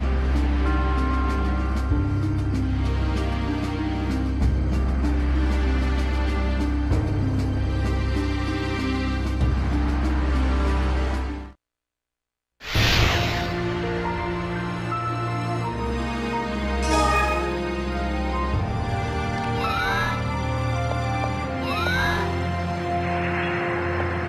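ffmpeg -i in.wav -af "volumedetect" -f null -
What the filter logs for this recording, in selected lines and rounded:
mean_volume: -23.1 dB
max_volume: -6.9 dB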